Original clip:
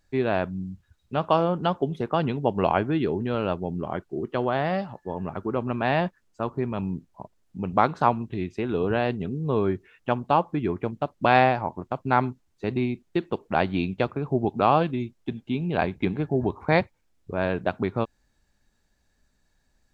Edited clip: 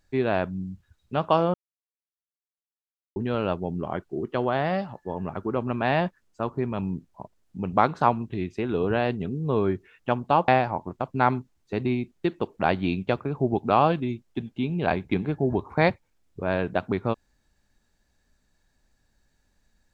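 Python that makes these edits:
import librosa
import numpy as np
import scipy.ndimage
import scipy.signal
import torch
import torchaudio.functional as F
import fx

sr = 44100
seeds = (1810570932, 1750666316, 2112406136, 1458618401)

y = fx.edit(x, sr, fx.silence(start_s=1.54, length_s=1.62),
    fx.cut(start_s=10.48, length_s=0.91), tone=tone)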